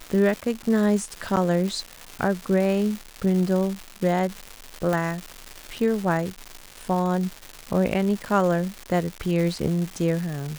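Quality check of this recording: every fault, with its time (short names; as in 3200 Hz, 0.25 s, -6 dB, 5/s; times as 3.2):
crackle 400/s -28 dBFS
1.36–1.37 gap 8.3 ms
4.93 pop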